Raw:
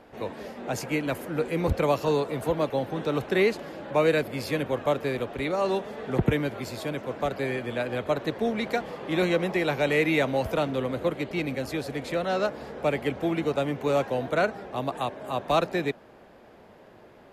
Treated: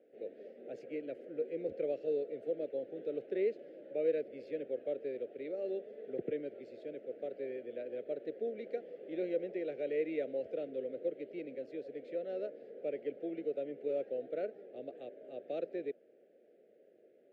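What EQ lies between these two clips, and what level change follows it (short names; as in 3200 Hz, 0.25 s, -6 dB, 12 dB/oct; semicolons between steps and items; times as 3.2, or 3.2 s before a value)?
ladder band-pass 630 Hz, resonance 40%; Butterworth band-stop 1000 Hz, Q 0.53; +4.5 dB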